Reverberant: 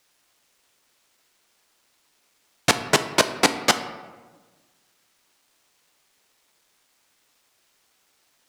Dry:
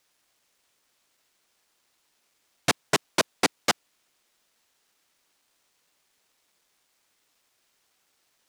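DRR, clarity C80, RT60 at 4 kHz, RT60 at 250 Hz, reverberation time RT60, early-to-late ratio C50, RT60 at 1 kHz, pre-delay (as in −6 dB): 9.0 dB, 13.0 dB, 0.75 s, 1.7 s, 1.4 s, 11.5 dB, 1.3 s, 10 ms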